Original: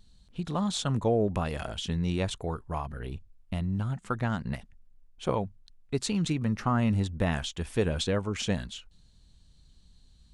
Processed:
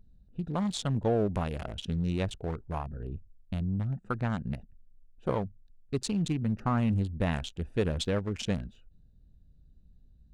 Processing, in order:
adaptive Wiener filter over 41 samples
in parallel at −7 dB: soft clipping −26 dBFS, distortion −11 dB
on the sum: level −3 dB

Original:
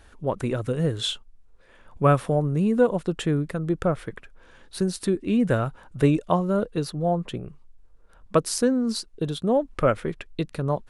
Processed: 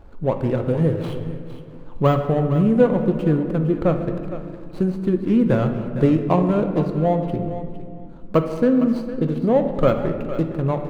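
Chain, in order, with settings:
running median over 25 samples
de-essing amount 70%
high-shelf EQ 3,500 Hz −10.5 dB
in parallel at 0 dB: downward compressor, threshold −35 dBFS, peak gain reduction 19 dB
on the sum: feedback echo with a high-pass in the loop 459 ms, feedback 16%, level −12 dB
on a send at −6 dB: convolution reverb RT60 2.2 s, pre-delay 3 ms
on the sum: level +2.5 dB

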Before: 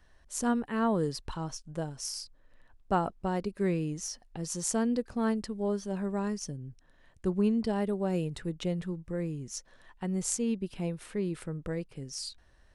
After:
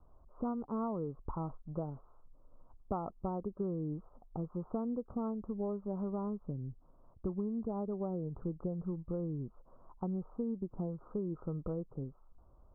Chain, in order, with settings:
Butterworth low-pass 1,300 Hz 96 dB per octave
downward compressor 10 to 1, threshold −34 dBFS, peak gain reduction 12.5 dB
level +1 dB

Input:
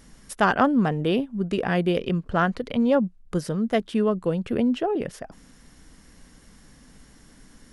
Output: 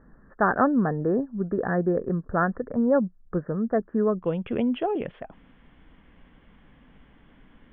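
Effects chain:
Chebyshev low-pass with heavy ripple 1,800 Hz, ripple 3 dB, from 0:04.22 3,400 Hz

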